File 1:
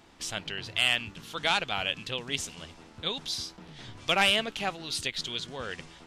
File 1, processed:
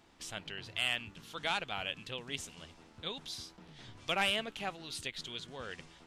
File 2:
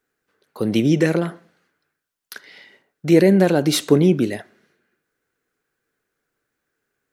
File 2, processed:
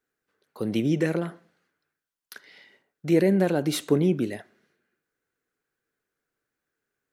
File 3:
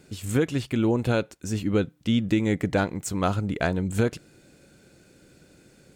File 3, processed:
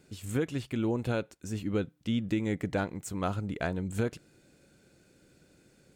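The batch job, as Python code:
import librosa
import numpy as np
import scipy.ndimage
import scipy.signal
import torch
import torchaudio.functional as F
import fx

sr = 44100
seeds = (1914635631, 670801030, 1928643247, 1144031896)

y = fx.dynamic_eq(x, sr, hz=5100.0, q=1.3, threshold_db=-42.0, ratio=4.0, max_db=-4)
y = y * 10.0 ** (-7.0 / 20.0)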